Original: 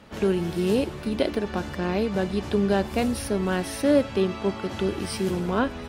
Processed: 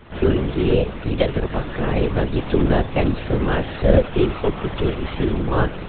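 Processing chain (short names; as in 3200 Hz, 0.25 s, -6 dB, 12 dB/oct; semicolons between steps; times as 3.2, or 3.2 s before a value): LPC vocoder at 8 kHz whisper; gain +5.5 dB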